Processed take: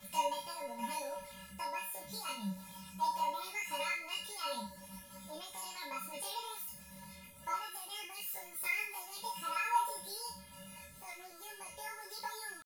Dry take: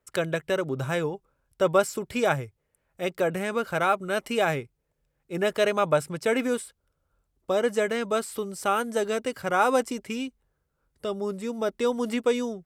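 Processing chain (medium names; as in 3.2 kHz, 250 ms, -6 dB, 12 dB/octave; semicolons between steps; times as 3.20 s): jump at every zero crossing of -36 dBFS; bass shelf 64 Hz +7.5 dB; compression 6:1, threshold -23 dBFS, peak gain reduction 9 dB; pitch shift +10 st; peaking EQ 11 kHz +13.5 dB 0.46 oct; feedback comb 190 Hz, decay 0.46 s, harmonics odd, mix 100%; detune thickener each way 28 cents; trim +11.5 dB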